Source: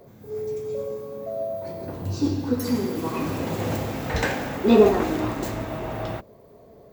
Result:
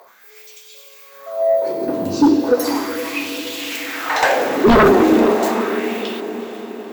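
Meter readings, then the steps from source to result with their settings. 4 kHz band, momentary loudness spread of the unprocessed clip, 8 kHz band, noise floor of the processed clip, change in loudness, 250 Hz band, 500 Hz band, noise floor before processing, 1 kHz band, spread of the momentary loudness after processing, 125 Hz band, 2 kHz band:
+10.5 dB, 14 LU, +9.0 dB, -44 dBFS, +8.5 dB, +7.5 dB, +7.0 dB, -50 dBFS, +11.0 dB, 14 LU, -2.5 dB, +11.5 dB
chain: LFO high-pass sine 0.36 Hz 260–3200 Hz; diffused feedback echo 0.455 s, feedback 58%, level -13 dB; sine folder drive 11 dB, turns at -0.5 dBFS; gain -6 dB

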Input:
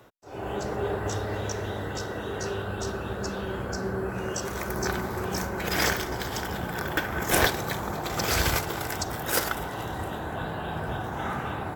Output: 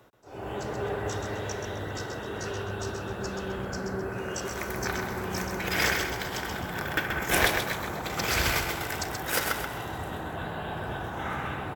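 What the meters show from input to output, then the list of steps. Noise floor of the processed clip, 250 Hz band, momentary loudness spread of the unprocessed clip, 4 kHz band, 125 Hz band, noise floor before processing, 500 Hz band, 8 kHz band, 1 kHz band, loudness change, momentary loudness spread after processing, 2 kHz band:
-37 dBFS, -2.5 dB, 8 LU, -0.5 dB, -3.0 dB, -35 dBFS, -2.0 dB, -2.0 dB, -1.5 dB, -1.0 dB, 10 LU, +1.0 dB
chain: dynamic EQ 2300 Hz, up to +6 dB, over -43 dBFS, Q 1.3; on a send: feedback echo 0.13 s, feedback 34%, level -6 dB; on the sum: gain -3.5 dB

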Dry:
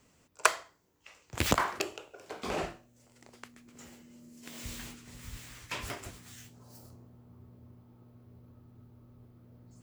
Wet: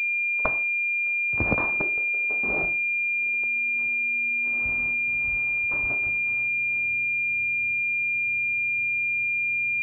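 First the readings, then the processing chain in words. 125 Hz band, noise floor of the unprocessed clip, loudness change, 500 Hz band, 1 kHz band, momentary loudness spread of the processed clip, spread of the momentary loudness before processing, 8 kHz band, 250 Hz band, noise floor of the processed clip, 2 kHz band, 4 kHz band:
+3.5 dB, -67 dBFS, +12.5 dB, +2.5 dB, -2.0 dB, 0 LU, 24 LU, under -20 dB, +3.5 dB, -25 dBFS, +20.5 dB, under -20 dB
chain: FFT order left unsorted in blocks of 16 samples; pulse-width modulation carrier 2400 Hz; gain +2.5 dB

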